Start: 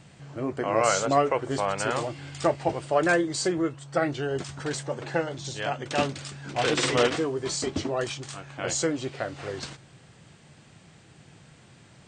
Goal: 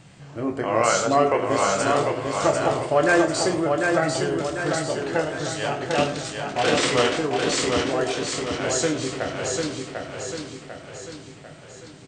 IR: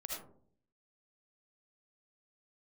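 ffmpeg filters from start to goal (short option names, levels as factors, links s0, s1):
-filter_complex "[0:a]asplit=2[s0][s1];[s1]adelay=26,volume=0.447[s2];[s0][s2]amix=inputs=2:normalize=0,aecho=1:1:746|1492|2238|2984|3730|4476:0.631|0.309|0.151|0.0742|0.0364|0.0178,asplit=2[s3][s4];[1:a]atrim=start_sample=2205[s5];[s4][s5]afir=irnorm=-1:irlink=0,volume=0.501[s6];[s3][s6]amix=inputs=2:normalize=0"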